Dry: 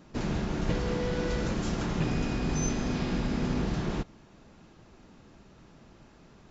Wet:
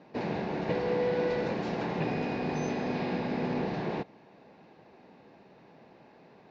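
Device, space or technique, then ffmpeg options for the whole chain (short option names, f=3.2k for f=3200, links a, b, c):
kitchen radio: -af "highpass=220,equalizer=f=220:t=q:w=4:g=-3,equalizer=f=320:t=q:w=4:g=-4,equalizer=f=480:t=q:w=4:g=3,equalizer=f=790:t=q:w=4:g=4,equalizer=f=1.3k:t=q:w=4:g=-10,equalizer=f=3.2k:t=q:w=4:g=-9,lowpass=f=3.9k:w=0.5412,lowpass=f=3.9k:w=1.3066,volume=3dB"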